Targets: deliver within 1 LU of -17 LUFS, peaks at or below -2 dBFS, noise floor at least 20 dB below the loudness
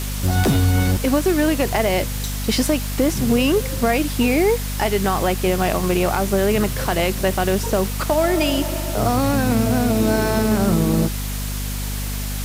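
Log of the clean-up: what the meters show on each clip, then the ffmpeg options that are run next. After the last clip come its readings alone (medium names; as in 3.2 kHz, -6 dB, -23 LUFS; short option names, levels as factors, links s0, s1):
hum 50 Hz; highest harmonic 250 Hz; hum level -23 dBFS; noise floor -25 dBFS; noise floor target -40 dBFS; loudness -19.5 LUFS; peak level -6.5 dBFS; loudness target -17.0 LUFS
-> -af "bandreject=f=50:t=h:w=6,bandreject=f=100:t=h:w=6,bandreject=f=150:t=h:w=6,bandreject=f=200:t=h:w=6,bandreject=f=250:t=h:w=6"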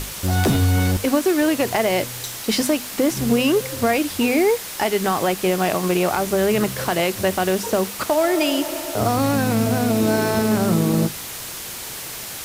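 hum not found; noise floor -32 dBFS; noise floor target -41 dBFS
-> -af "afftdn=nr=9:nf=-32"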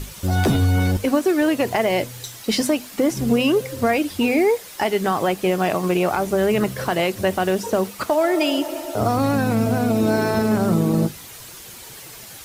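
noise floor -40 dBFS; noise floor target -41 dBFS
-> -af "afftdn=nr=6:nf=-40"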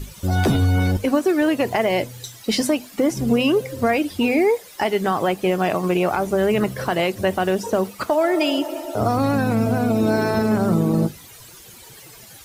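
noise floor -44 dBFS; loudness -20.5 LUFS; peak level -7.5 dBFS; loudness target -17.0 LUFS
-> -af "volume=1.5"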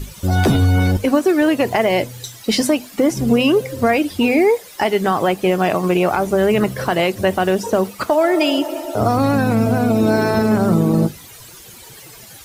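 loudness -17.0 LUFS; peak level -4.0 dBFS; noise floor -40 dBFS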